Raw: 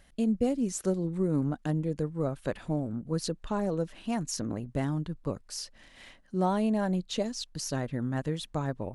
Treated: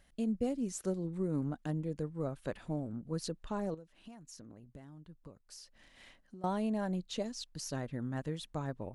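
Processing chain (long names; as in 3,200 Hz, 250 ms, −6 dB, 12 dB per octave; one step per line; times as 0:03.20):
0:03.74–0:06.44: downward compressor 12 to 1, threshold −42 dBFS, peak gain reduction 19.5 dB
level −6.5 dB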